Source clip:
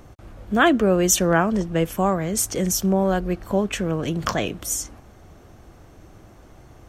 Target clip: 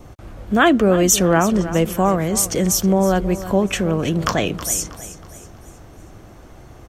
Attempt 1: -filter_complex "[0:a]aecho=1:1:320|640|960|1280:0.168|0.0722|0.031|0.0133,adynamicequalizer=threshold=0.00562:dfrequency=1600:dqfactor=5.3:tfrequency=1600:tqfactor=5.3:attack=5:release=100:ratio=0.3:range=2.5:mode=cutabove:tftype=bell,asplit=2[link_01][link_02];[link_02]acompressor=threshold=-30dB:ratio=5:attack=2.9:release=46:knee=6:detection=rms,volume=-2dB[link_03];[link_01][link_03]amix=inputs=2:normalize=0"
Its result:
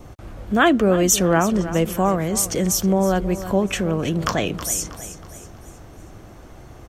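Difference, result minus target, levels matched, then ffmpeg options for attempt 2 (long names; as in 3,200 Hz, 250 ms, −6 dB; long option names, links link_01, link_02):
downward compressor: peak gain reduction +9.5 dB
-filter_complex "[0:a]aecho=1:1:320|640|960|1280:0.168|0.0722|0.031|0.0133,adynamicequalizer=threshold=0.00562:dfrequency=1600:dqfactor=5.3:tfrequency=1600:tqfactor=5.3:attack=5:release=100:ratio=0.3:range=2.5:mode=cutabove:tftype=bell,asplit=2[link_01][link_02];[link_02]acompressor=threshold=-18dB:ratio=5:attack=2.9:release=46:knee=6:detection=rms,volume=-2dB[link_03];[link_01][link_03]amix=inputs=2:normalize=0"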